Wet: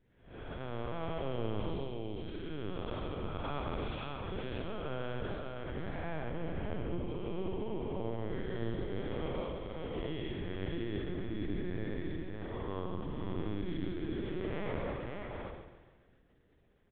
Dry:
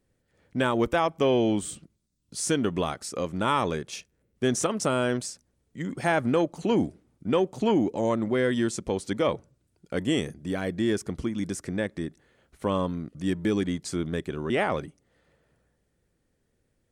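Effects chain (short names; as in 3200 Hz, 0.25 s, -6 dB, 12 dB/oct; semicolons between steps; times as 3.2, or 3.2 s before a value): time blur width 0.328 s; reverse; compressor 6:1, threshold -40 dBFS, peak gain reduction 16 dB; reverse; notch comb 250 Hz; echo 0.558 s -4 dB; LPC vocoder at 8 kHz pitch kept; on a send: feedback echo 0.139 s, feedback 48%, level -10.5 dB; on the sum: gain +5 dB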